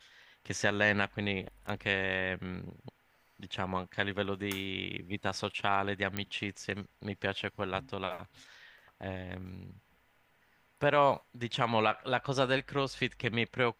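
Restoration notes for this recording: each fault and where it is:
6.17 s: pop -18 dBFS

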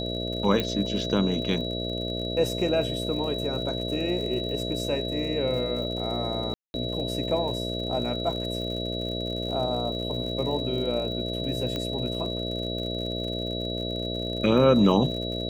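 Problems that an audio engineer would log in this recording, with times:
buzz 60 Hz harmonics 11 -32 dBFS
crackle 70 per s -35 dBFS
whine 3.9 kHz -33 dBFS
0.60 s: pop -13 dBFS
6.54–6.74 s: dropout 201 ms
11.76 s: pop -17 dBFS

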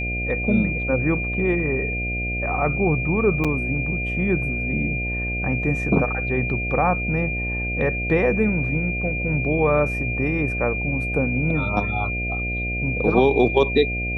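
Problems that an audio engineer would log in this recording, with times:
buzz 60 Hz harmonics 12 -28 dBFS
whine 2.4 kHz -26 dBFS
3.44–3.45 s: dropout 6.5 ms

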